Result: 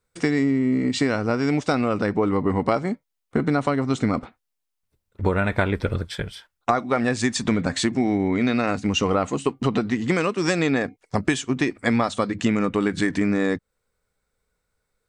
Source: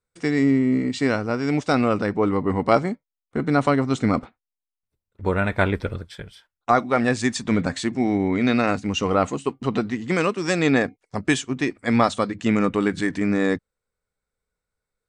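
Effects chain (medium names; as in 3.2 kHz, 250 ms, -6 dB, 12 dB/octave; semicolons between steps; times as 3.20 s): compression 6:1, threshold -26 dBFS, peak gain reduction 14 dB; trim +8 dB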